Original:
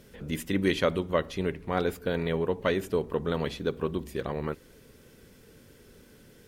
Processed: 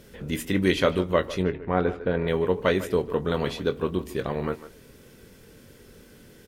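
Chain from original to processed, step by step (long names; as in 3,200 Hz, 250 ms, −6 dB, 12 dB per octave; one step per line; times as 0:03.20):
0:01.42–0:02.28: low-pass filter 2,000 Hz 12 dB per octave
double-tracking delay 22 ms −10.5 dB
far-end echo of a speakerphone 150 ms, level −14 dB
level +3.5 dB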